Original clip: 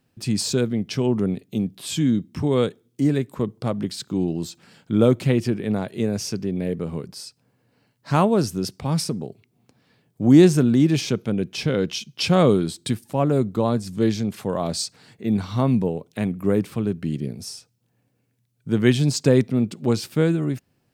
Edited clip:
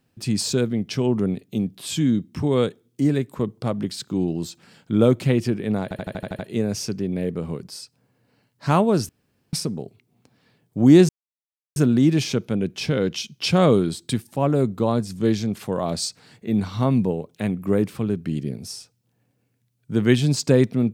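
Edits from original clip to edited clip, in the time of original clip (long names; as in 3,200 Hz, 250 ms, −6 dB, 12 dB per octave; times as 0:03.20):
0:05.83: stutter 0.08 s, 8 plays
0:08.53–0:08.97: fill with room tone
0:10.53: splice in silence 0.67 s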